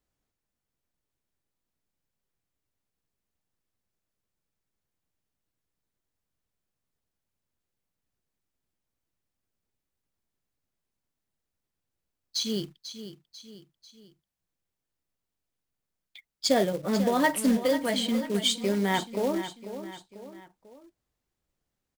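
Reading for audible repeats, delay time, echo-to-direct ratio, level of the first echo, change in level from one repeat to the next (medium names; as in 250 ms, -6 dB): 3, 493 ms, -10.5 dB, -11.5 dB, -6.5 dB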